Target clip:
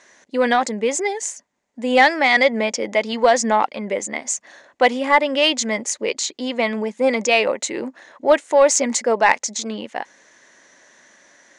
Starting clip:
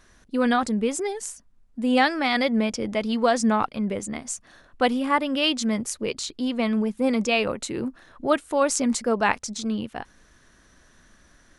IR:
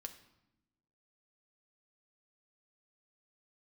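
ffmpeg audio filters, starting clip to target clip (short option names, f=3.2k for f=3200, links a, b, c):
-af "highpass=330,equalizer=f=570:t=q:w=4:g=6,equalizer=f=880:t=q:w=4:g=5,equalizer=f=1.3k:t=q:w=4:g=-5,equalizer=f=2k:t=q:w=4:g=9,equalizer=f=6.7k:t=q:w=4:g=8,lowpass=f=8.2k:w=0.5412,lowpass=f=8.2k:w=1.3066,acontrast=43,volume=-1dB"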